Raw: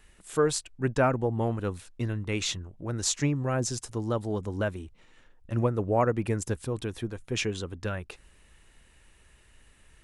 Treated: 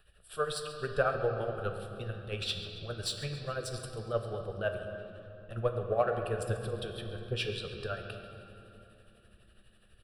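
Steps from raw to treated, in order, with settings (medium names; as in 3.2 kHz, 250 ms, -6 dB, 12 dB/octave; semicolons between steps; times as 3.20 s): tremolo 12 Hz, depth 63%; in parallel at -10 dB: saturation -27 dBFS, distortion -9 dB; on the sum: harmonic-percussive split percussive +9 dB; static phaser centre 1.4 kHz, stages 8; feedback delay 137 ms, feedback 49%, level -16.5 dB; on a send at -4 dB: reverberation RT60 3.3 s, pre-delay 7 ms; on the sum: trim -9 dB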